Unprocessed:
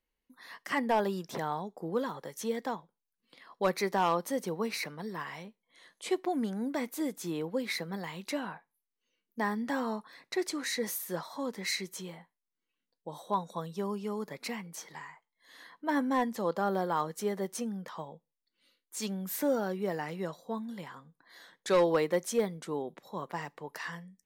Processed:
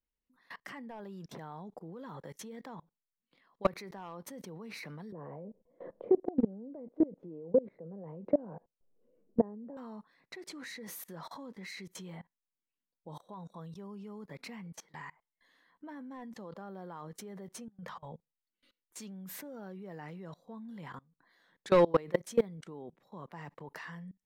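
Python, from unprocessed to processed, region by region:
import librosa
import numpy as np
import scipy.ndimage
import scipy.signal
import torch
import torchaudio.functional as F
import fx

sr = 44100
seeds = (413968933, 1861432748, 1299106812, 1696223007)

y = fx.chain(x, sr, fx.lowpass_res(hz=530.0, q=3.7),
    fx.band_squash(depth_pct=70), at=(5.12, 9.77))
y = fx.chain(y, sr, fx.peak_eq(hz=310.0, db=-7.5, octaves=0.62),
    fx.over_compress(threshold_db=-45.0, ratio=-0.5),
    fx.hum_notches(base_hz=50, count=8), at=(17.68, 18.12))
y = fx.bass_treble(y, sr, bass_db=7, treble_db=-8)
y = fx.level_steps(y, sr, step_db=24)
y = y * librosa.db_to_amplitude(3.0)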